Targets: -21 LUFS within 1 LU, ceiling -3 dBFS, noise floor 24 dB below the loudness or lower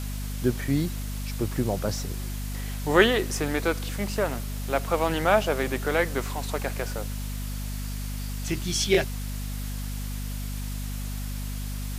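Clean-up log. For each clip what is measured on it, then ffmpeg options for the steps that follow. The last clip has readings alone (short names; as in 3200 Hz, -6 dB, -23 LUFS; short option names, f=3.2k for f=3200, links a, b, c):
hum 50 Hz; harmonics up to 250 Hz; hum level -30 dBFS; noise floor -32 dBFS; noise floor target -52 dBFS; loudness -28.0 LUFS; peak -4.0 dBFS; loudness target -21.0 LUFS
-> -af "bandreject=f=50:t=h:w=6,bandreject=f=100:t=h:w=6,bandreject=f=150:t=h:w=6,bandreject=f=200:t=h:w=6,bandreject=f=250:t=h:w=6"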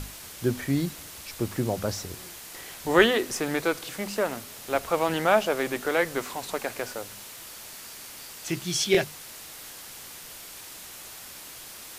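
hum none; noise floor -43 dBFS; noise floor target -51 dBFS
-> -af "afftdn=nr=8:nf=-43"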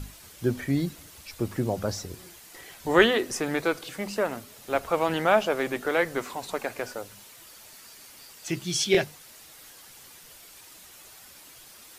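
noise floor -50 dBFS; noise floor target -51 dBFS
-> -af "afftdn=nr=6:nf=-50"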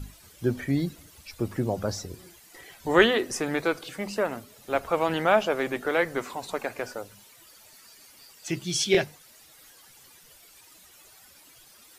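noise floor -54 dBFS; loudness -27.0 LUFS; peak -4.5 dBFS; loudness target -21.0 LUFS
-> -af "volume=6dB,alimiter=limit=-3dB:level=0:latency=1"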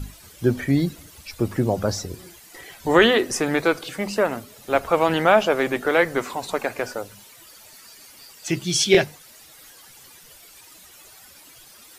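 loudness -21.5 LUFS; peak -3.0 dBFS; noise floor -48 dBFS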